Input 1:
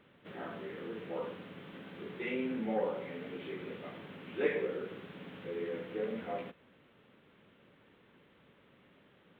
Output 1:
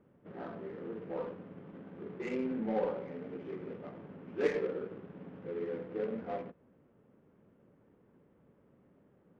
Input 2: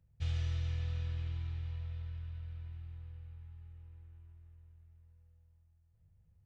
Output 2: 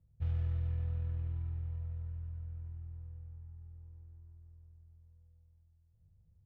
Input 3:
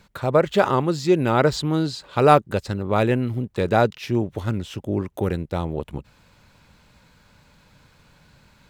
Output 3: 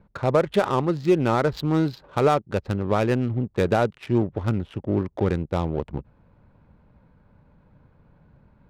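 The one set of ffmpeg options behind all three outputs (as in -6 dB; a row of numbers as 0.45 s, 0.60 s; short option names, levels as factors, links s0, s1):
-af "alimiter=limit=0.316:level=0:latency=1:release=373,adynamicsmooth=sensitivity=4:basefreq=830,volume=1.12"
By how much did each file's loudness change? +0.5 LU, +1.0 LU, -2.0 LU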